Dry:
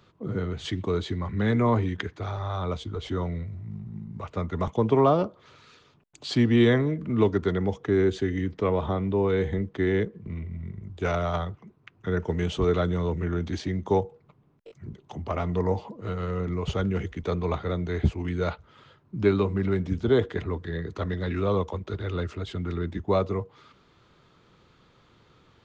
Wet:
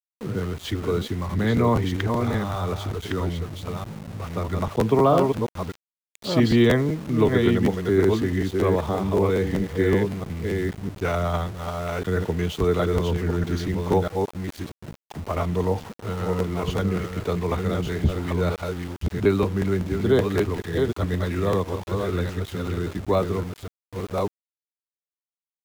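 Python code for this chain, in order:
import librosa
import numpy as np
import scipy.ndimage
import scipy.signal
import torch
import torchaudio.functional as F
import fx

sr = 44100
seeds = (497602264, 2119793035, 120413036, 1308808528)

y = fx.reverse_delay(x, sr, ms=640, wet_db=-4.0)
y = np.where(np.abs(y) >= 10.0 ** (-38.0 / 20.0), y, 0.0)
y = fx.buffer_crackle(y, sr, first_s=0.42, period_s=0.19, block=512, kind='repeat')
y = y * 10.0 ** (2.0 / 20.0)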